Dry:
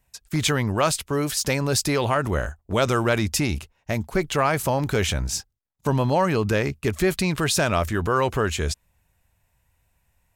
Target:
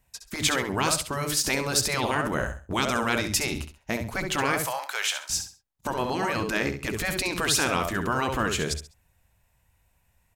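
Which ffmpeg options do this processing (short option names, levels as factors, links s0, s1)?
-filter_complex "[0:a]asettb=1/sr,asplit=3[s0][s1][s2];[s0]atrim=end=4.604[s3];[s1]atrim=start=4.6:end=5.3,asetpts=PTS-STARTPTS,afade=t=in:d=0.004:c=qsin,afade=t=out:st=0.696:d=0.004:c=qsin,highpass=f=810:w=0.5412,highpass=f=810:w=1.3066[s4];[s2]atrim=start=5.296[s5];[s3][s4]acrossfade=d=0.004:c1=hsin:c2=qsin[s6];[s6][s5]acrossfade=d=0.004:c1=qsin:c2=hsin,asplit=2[s7][s8];[s8]aecho=0:1:67|134|201:0.355|0.0923|0.024[s9];[s7][s9]amix=inputs=2:normalize=0,afftfilt=real='re*lt(hypot(re,im),0.398)':imag='im*lt(hypot(re,im),0.398)':win_size=1024:overlap=0.75"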